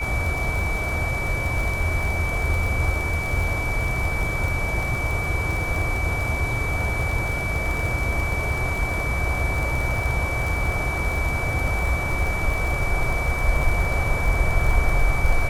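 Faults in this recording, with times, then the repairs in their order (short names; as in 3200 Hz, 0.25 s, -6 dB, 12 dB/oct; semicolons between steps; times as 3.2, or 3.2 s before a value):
crackle 37/s -25 dBFS
tone 2300 Hz -27 dBFS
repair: de-click; notch 2300 Hz, Q 30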